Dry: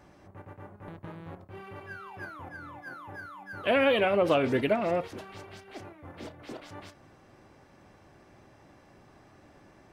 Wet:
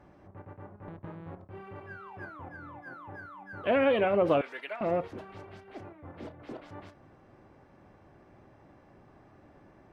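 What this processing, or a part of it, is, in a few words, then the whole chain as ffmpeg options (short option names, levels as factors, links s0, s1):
through cloth: -filter_complex "[0:a]asettb=1/sr,asplit=3[s0][s1][s2];[s0]atrim=end=4.414[s3];[s1]atrim=start=4.41:end=4.81,asetpts=PTS-STARTPTS,afade=t=in:d=0.004:c=qsin,afade=t=out:st=0.396:d=0.004:c=qsin,highpass=1300[s4];[s2]atrim=start=4.806[s5];[s3][s4]acrossfade=d=0.004:c1=hsin:c2=qsin[s6];[s6][s5]acrossfade=d=0.004:c1=qsin:c2=hsin,highshelf=f=3200:g=-16"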